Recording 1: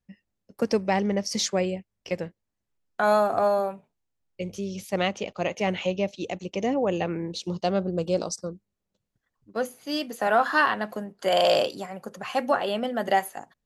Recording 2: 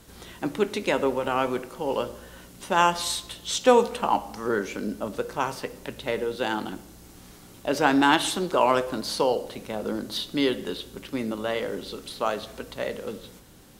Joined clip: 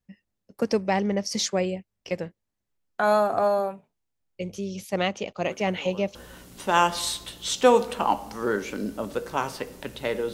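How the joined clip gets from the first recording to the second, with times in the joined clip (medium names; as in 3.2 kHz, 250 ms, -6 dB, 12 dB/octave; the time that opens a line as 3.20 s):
recording 1
5.44 s: add recording 2 from 1.47 s 0.71 s -16 dB
6.15 s: go over to recording 2 from 2.18 s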